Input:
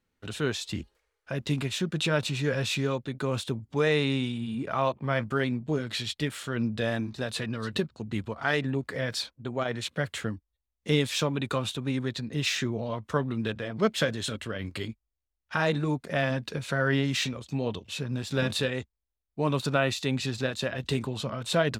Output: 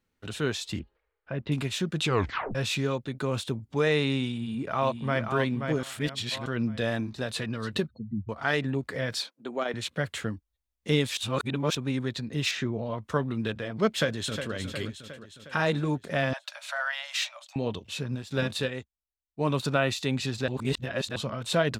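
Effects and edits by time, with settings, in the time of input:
0.79–1.52 s: distance through air 360 m
2.04 s: tape stop 0.51 s
4.29–5.21 s: echo throw 530 ms, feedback 35%, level -6 dB
5.83–6.46 s: reverse
7.88–8.29 s: spectral contrast enhancement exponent 3.7
9.20–9.74 s: high-pass 230 Hz 24 dB/octave
11.17–11.75 s: reverse
12.51–12.98 s: low-pass 2.6 kHz 6 dB/octave
13.95–14.53 s: echo throw 360 ms, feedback 60%, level -9 dB
16.33–17.56 s: Chebyshev high-pass 570 Hz, order 10
18.15–19.41 s: upward expansion, over -45 dBFS
20.48–21.16 s: reverse

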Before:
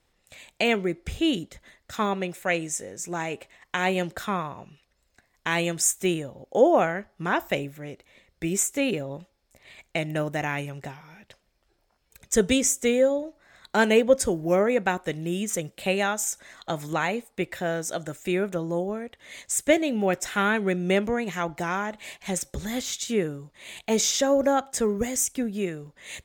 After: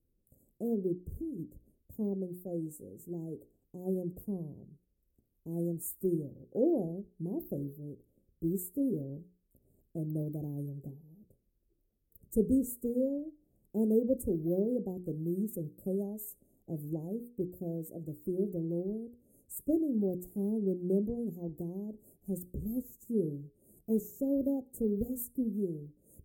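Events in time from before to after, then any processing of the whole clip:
0.99–1.39 s: compression, threshold -31 dBFS
whole clip: inverse Chebyshev band-stop 1.3–4.3 kHz, stop band 70 dB; hum notches 60/120/180/240/300/360/420/480 Hz; dynamic bell 990 Hz, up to +5 dB, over -46 dBFS, Q 1.2; trim -3.5 dB

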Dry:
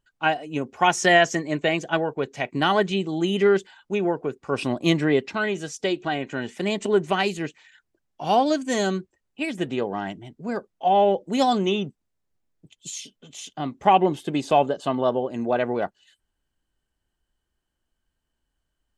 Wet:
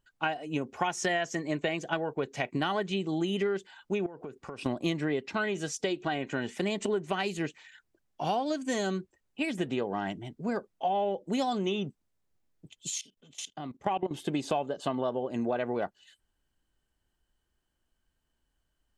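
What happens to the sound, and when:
4.06–4.66 s: compression 20:1, threshold -36 dBFS
12.98–14.11 s: level held to a coarse grid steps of 19 dB
whole clip: compression 6:1, threshold -27 dBFS

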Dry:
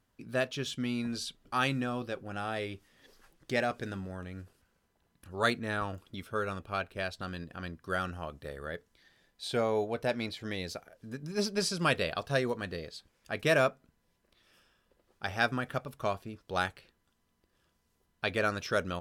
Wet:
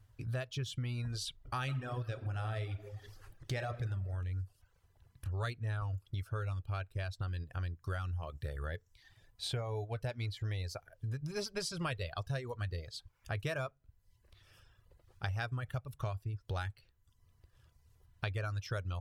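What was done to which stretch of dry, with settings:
1.43–3.72 s: reverb throw, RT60 1.1 s, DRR 6 dB
whole clip: reverb removal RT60 0.61 s; resonant low shelf 150 Hz +11 dB, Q 3; compression 5:1, threshold -37 dBFS; trim +1.5 dB

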